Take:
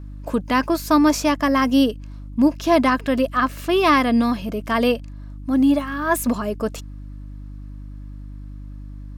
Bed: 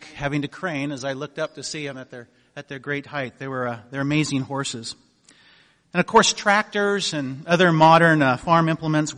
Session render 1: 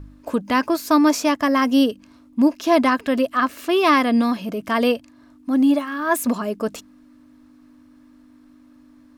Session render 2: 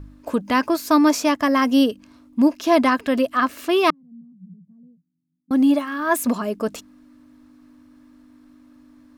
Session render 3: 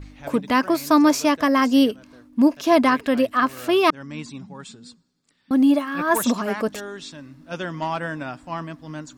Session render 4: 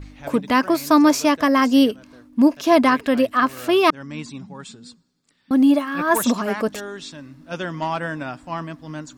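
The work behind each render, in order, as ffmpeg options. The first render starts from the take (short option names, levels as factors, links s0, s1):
-af "bandreject=f=50:t=h:w=4,bandreject=f=100:t=h:w=4,bandreject=f=150:t=h:w=4,bandreject=f=200:t=h:w=4"
-filter_complex "[0:a]asettb=1/sr,asplit=3[s0][s1][s2];[s0]atrim=end=3.904[s3];[s1]atrim=start=3.9:end=5.51,asetpts=PTS-STARTPTS,afade=t=in:d=0.004:c=qsin,afade=t=out:st=1.606:d=0.004:c=qsin,asuperpass=centerf=170:order=4:qfactor=6.7[s4];[s2]atrim=start=5.506[s5];[s3][s4]acrossfade=d=0.004:c1=hsin:c2=qsin[s6];[s6][s5]acrossfade=d=0.004:c1=qsin:c2=hsin"
-filter_complex "[1:a]volume=0.211[s0];[0:a][s0]amix=inputs=2:normalize=0"
-af "volume=1.19"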